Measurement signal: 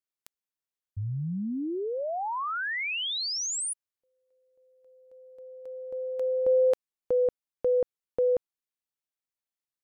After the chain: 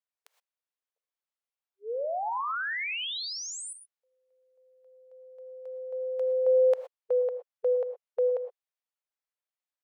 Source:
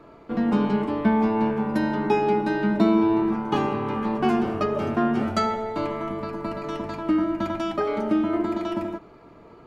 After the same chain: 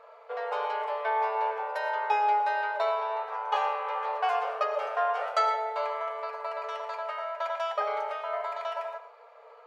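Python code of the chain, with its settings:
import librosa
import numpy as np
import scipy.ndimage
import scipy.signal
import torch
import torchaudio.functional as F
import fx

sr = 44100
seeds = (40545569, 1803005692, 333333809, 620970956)

y = fx.brickwall_highpass(x, sr, low_hz=440.0)
y = fx.high_shelf(y, sr, hz=4900.0, db=-10.5)
y = fx.rev_gated(y, sr, seeds[0], gate_ms=140, shape='rising', drr_db=10.0)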